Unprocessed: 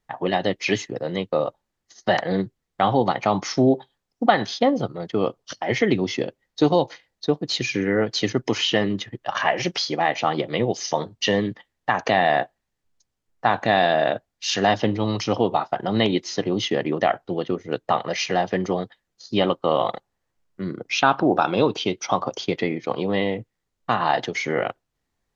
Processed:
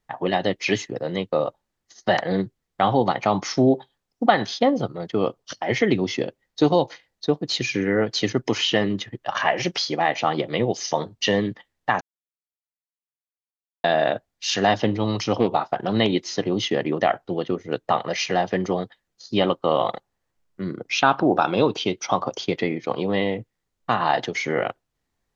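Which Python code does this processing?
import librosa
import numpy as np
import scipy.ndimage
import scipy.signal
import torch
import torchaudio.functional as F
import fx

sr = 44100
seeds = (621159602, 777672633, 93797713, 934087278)

y = fx.doppler_dist(x, sr, depth_ms=0.25, at=(15.37, 15.93))
y = fx.edit(y, sr, fx.silence(start_s=12.01, length_s=1.83), tone=tone)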